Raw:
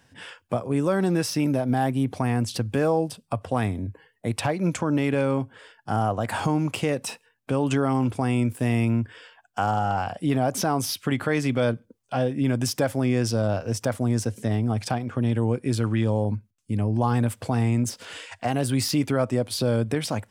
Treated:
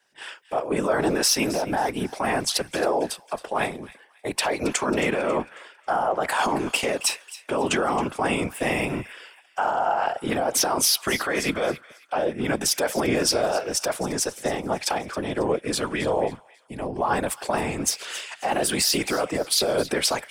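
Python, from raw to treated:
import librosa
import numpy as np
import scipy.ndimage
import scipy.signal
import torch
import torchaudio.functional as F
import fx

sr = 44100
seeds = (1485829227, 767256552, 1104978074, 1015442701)

p1 = scipy.signal.sosfilt(scipy.signal.butter(2, 480.0, 'highpass', fs=sr, output='sos'), x)
p2 = fx.over_compress(p1, sr, threshold_db=-30.0, ratio=-0.5)
p3 = p1 + (p2 * 10.0 ** (1.5 / 20.0))
p4 = fx.whisperise(p3, sr, seeds[0])
p5 = p4 + fx.echo_wet_highpass(p4, sr, ms=272, feedback_pct=46, hz=1600.0, wet_db=-13, dry=0)
y = fx.band_widen(p5, sr, depth_pct=40)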